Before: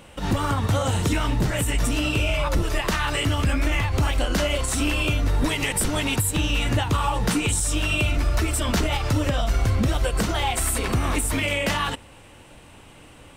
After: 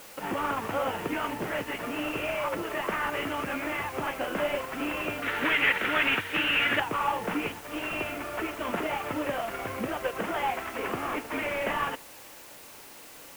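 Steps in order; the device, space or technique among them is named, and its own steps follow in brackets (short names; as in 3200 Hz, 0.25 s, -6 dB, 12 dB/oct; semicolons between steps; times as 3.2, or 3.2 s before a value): army field radio (BPF 350–2900 Hz; CVSD 16 kbps; white noise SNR 17 dB); 5.22–6.8 band shelf 2200 Hz +11.5 dB; gain -1.5 dB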